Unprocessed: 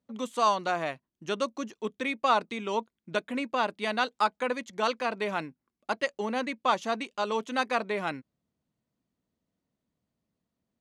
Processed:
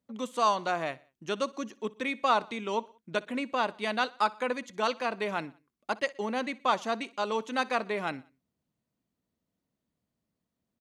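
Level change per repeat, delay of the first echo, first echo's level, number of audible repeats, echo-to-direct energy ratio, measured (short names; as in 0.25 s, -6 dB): -6.0 dB, 61 ms, -22.0 dB, 3, -21.0 dB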